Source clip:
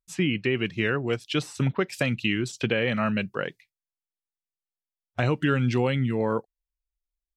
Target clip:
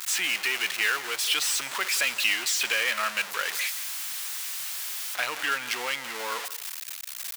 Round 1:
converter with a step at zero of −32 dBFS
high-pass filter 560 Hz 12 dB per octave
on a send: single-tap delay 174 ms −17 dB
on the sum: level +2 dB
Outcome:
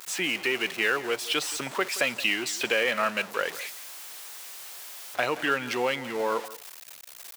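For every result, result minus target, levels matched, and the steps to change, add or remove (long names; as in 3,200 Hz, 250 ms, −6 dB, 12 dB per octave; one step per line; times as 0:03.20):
500 Hz band +11.0 dB; converter with a step at zero: distortion −7 dB
change: high-pass filter 1,300 Hz 12 dB per octave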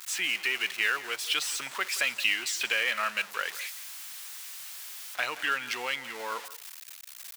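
converter with a step at zero: distortion −7 dB
change: converter with a step at zero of −23.5 dBFS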